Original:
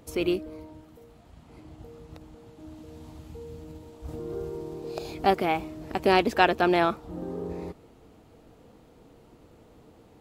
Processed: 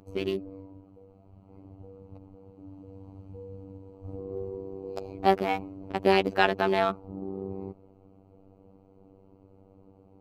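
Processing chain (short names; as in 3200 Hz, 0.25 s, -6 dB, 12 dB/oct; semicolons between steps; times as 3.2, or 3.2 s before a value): Wiener smoothing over 25 samples; robotiser 96.6 Hz; gain +1 dB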